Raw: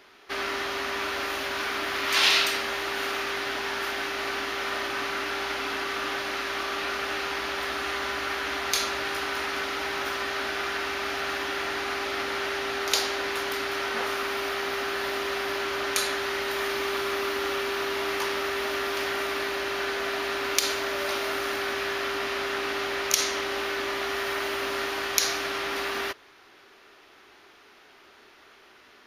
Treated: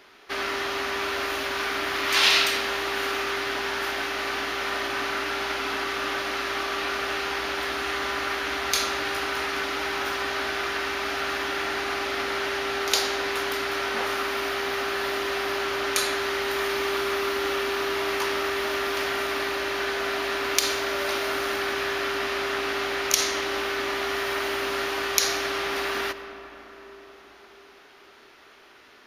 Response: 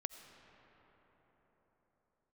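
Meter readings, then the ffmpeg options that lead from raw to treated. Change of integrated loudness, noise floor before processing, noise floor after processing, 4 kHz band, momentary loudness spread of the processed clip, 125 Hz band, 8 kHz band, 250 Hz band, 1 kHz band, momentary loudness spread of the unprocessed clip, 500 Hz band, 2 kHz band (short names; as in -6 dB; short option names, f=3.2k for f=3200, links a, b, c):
+2.0 dB, -54 dBFS, -51 dBFS, +1.5 dB, 4 LU, +2.5 dB, +1.5 dB, +2.0 dB, +2.0 dB, 4 LU, +2.0 dB, +1.5 dB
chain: -filter_complex "[0:a]asplit=2[a][b];[1:a]atrim=start_sample=2205[c];[b][c]afir=irnorm=-1:irlink=0,volume=9.5dB[d];[a][d]amix=inputs=2:normalize=0,volume=-8.5dB"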